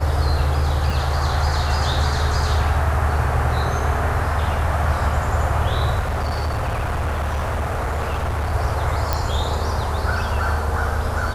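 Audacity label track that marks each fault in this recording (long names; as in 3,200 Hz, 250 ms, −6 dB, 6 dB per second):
0.900000	0.900000	drop-out 3.1 ms
5.990000	8.540000	clipping −19 dBFS
9.130000	9.130000	click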